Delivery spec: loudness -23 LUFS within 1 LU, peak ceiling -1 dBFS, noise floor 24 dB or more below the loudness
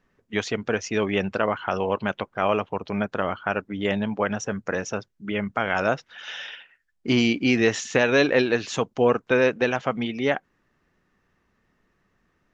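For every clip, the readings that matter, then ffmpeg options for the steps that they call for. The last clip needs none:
loudness -24.5 LUFS; peak level -4.0 dBFS; loudness target -23.0 LUFS
-> -af "volume=1.19"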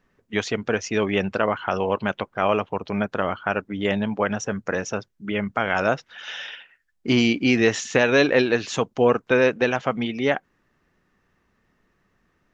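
loudness -23.0 LUFS; peak level -2.5 dBFS; noise floor -69 dBFS

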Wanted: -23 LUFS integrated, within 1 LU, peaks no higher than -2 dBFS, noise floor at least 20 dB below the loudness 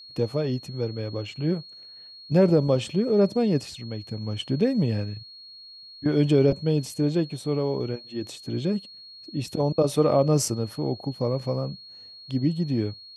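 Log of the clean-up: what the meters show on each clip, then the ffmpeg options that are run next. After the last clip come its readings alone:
steady tone 4.3 kHz; tone level -43 dBFS; loudness -25.5 LUFS; peak level -8.5 dBFS; loudness target -23.0 LUFS
-> -af "bandreject=f=4300:w=30"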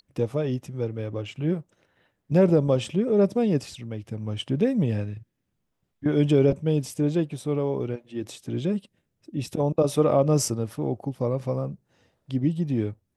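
steady tone not found; loudness -25.5 LUFS; peak level -8.5 dBFS; loudness target -23.0 LUFS
-> -af "volume=1.33"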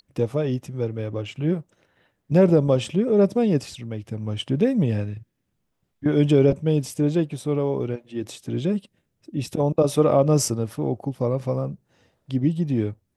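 loudness -23.0 LUFS; peak level -6.0 dBFS; noise floor -74 dBFS

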